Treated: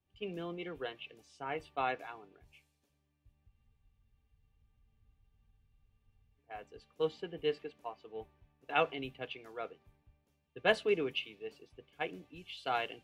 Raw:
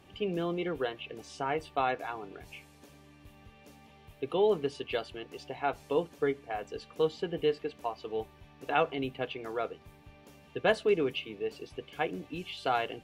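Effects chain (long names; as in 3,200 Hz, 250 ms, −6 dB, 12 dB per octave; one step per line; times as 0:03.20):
dynamic equaliser 2,600 Hz, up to +5 dB, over −47 dBFS, Q 1
frozen spectrum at 0:03.50, 2.88 s
multiband upward and downward expander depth 70%
level −9 dB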